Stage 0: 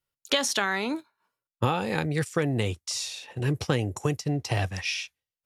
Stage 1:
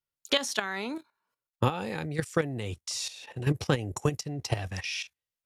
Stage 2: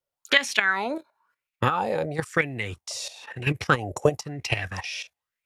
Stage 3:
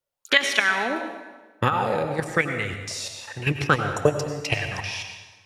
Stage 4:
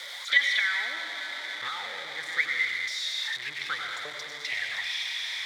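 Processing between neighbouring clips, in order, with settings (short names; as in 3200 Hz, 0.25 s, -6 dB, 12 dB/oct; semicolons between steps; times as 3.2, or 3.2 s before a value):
level quantiser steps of 12 dB; gain +2 dB
LFO bell 1 Hz 540–2500 Hz +18 dB
plate-style reverb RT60 1.3 s, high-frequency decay 0.8×, pre-delay 80 ms, DRR 6 dB; gain +1 dB
zero-crossing step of -16.5 dBFS; double band-pass 2700 Hz, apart 0.77 oct; gain -2 dB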